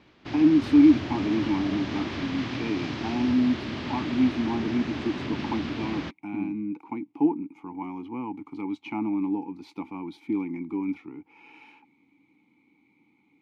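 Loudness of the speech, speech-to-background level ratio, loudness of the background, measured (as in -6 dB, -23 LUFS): -27.0 LUFS, 6.5 dB, -33.5 LUFS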